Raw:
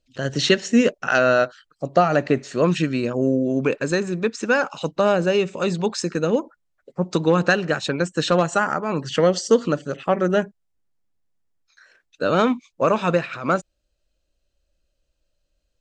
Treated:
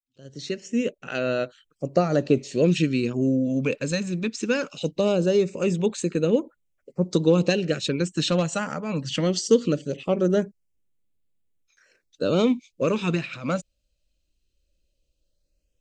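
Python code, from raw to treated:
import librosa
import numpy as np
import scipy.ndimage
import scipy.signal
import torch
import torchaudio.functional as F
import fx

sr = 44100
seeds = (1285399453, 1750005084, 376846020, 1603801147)

y = fx.fade_in_head(x, sr, length_s=1.96)
y = fx.band_shelf(y, sr, hz=1100.0, db=-10.0, octaves=1.7)
y = fx.filter_lfo_notch(y, sr, shape='sine', hz=0.2, low_hz=360.0, high_hz=5600.0, q=1.9)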